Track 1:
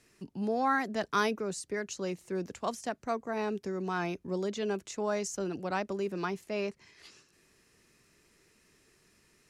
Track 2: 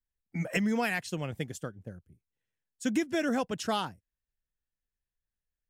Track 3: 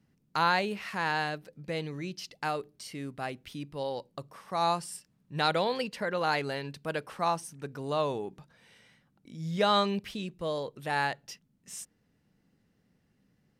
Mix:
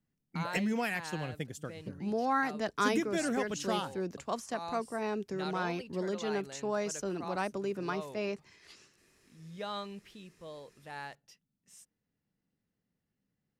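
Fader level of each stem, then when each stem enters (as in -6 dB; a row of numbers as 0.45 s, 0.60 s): -1.5 dB, -3.5 dB, -14.0 dB; 1.65 s, 0.00 s, 0.00 s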